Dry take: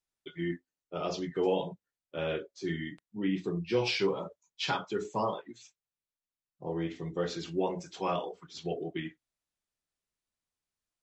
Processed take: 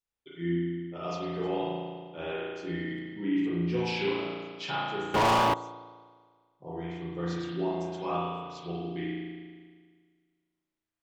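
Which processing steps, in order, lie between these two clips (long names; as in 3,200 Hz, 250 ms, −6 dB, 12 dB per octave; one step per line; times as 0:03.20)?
spring reverb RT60 1.7 s, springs 35 ms, chirp 70 ms, DRR −6.5 dB
0:05.14–0:05.54: leveller curve on the samples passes 5
level −6 dB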